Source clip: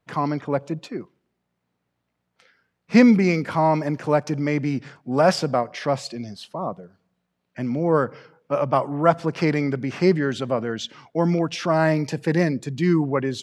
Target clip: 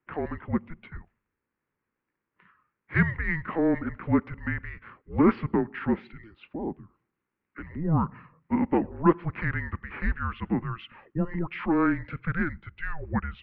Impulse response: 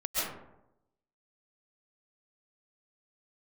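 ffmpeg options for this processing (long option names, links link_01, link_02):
-af "equalizer=frequency=1000:width_type=o:width=0.42:gain=-12.5,highpass=frequency=460:width_type=q:width=0.5412,highpass=frequency=460:width_type=q:width=1.307,lowpass=frequency=2700:width_type=q:width=0.5176,lowpass=frequency=2700:width_type=q:width=0.7071,lowpass=frequency=2700:width_type=q:width=1.932,afreqshift=-330"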